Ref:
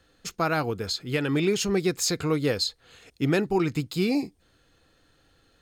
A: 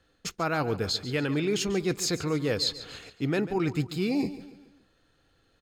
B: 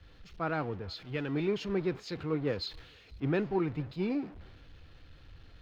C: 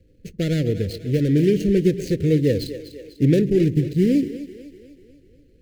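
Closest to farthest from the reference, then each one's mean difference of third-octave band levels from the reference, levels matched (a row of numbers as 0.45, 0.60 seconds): A, B, C; 5.0, 6.5, 9.0 decibels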